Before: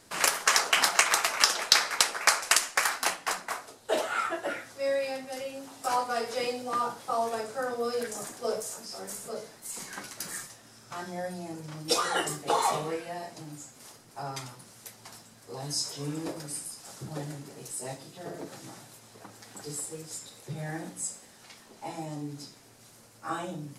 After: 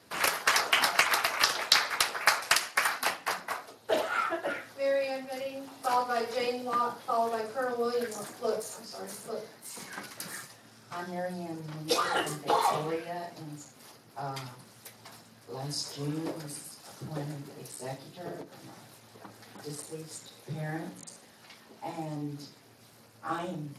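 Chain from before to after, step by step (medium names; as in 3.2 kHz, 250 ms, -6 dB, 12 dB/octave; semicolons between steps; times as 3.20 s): 18.41–18.90 s: compression 20:1, threshold -43 dBFS, peak gain reduction 9 dB; Speex 28 kbps 32 kHz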